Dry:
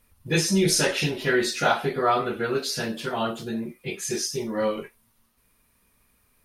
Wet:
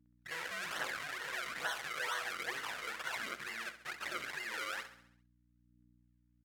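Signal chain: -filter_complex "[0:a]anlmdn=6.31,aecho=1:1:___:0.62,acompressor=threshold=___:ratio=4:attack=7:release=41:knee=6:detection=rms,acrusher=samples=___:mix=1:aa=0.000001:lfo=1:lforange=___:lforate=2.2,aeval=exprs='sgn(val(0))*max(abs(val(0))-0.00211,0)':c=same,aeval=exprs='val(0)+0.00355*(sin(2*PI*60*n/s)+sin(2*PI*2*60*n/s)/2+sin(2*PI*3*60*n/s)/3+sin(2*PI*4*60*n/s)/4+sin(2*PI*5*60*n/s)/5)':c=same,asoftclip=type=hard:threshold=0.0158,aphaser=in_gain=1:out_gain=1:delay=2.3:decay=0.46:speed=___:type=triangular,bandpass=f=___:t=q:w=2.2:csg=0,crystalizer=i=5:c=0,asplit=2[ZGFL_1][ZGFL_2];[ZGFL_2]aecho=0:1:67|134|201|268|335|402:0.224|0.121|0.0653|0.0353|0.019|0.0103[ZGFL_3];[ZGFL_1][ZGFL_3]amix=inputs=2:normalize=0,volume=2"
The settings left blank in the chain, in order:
6.1, 0.0141, 35, 35, 1.2, 1700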